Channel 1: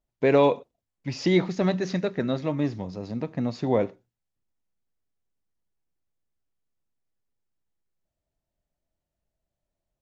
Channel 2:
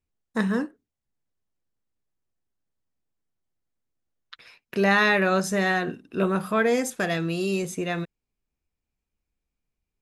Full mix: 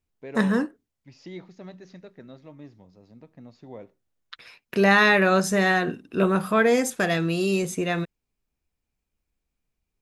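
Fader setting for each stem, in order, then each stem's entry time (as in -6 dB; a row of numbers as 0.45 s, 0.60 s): -18.5 dB, +2.5 dB; 0.00 s, 0.00 s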